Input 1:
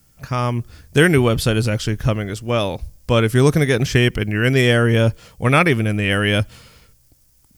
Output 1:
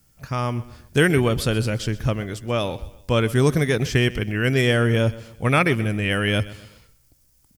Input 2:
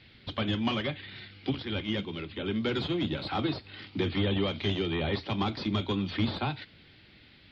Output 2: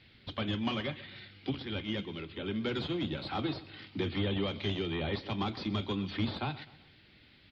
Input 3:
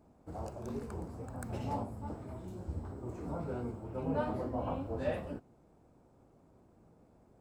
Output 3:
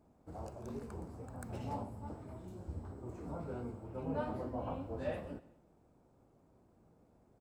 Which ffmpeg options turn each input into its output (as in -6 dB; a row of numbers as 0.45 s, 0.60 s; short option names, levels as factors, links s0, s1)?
-af "aecho=1:1:127|254|381:0.126|0.0529|0.0222,volume=0.631"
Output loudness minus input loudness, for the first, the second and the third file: -4.0 LU, -4.0 LU, -4.0 LU